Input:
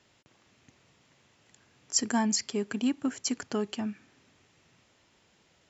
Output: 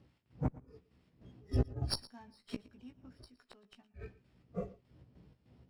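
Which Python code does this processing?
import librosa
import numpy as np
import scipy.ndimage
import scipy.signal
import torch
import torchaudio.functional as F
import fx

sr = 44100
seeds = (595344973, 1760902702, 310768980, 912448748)

y = fx.freq_compress(x, sr, knee_hz=3000.0, ratio=1.5)
y = fx.dmg_wind(y, sr, seeds[0], corner_hz=170.0, level_db=-37.0)
y = fx.noise_reduce_blind(y, sr, reduce_db=22)
y = scipy.signal.sosfilt(scipy.signal.butter(2, 63.0, 'highpass', fs=sr, output='sos'), y)
y = fx.gate_flip(y, sr, shuts_db=-28.0, range_db=-36)
y = fx.chopper(y, sr, hz=3.3, depth_pct=60, duty_pct=60)
y = fx.doubler(y, sr, ms=16.0, db=-5.5)
y = y + 10.0 ** (-19.5 / 20.0) * np.pad(y, (int(116 * sr / 1000.0), 0))[:len(y)]
y = fx.running_max(y, sr, window=3)
y = F.gain(torch.from_numpy(y), 9.0).numpy()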